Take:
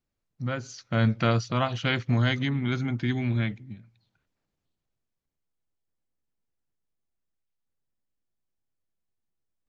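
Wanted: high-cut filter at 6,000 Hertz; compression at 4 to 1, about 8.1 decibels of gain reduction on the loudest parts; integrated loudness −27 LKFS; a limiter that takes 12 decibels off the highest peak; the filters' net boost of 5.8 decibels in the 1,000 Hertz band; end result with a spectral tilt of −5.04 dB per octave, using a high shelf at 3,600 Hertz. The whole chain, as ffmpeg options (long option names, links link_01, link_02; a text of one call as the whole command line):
ffmpeg -i in.wav -af "lowpass=6000,equalizer=frequency=1000:width_type=o:gain=7,highshelf=frequency=3600:gain=8,acompressor=threshold=-26dB:ratio=4,volume=8dB,alimiter=limit=-16dB:level=0:latency=1" out.wav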